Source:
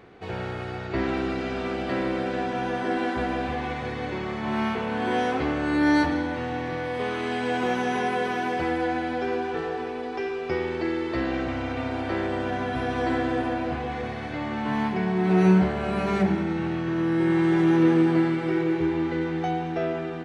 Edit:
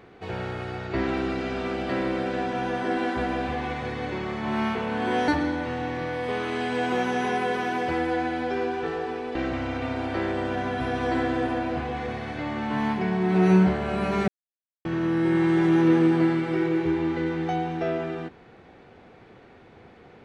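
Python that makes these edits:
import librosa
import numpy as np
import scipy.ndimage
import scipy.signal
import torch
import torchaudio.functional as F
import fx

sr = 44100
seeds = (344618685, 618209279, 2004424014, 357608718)

y = fx.edit(x, sr, fx.cut(start_s=5.28, length_s=0.71),
    fx.cut(start_s=10.06, length_s=1.24),
    fx.silence(start_s=16.23, length_s=0.57), tone=tone)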